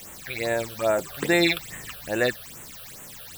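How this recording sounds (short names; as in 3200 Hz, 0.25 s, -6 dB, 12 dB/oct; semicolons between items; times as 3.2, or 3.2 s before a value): a quantiser's noise floor 8-bit, dither triangular; phasing stages 8, 2.4 Hz, lowest notch 260–4900 Hz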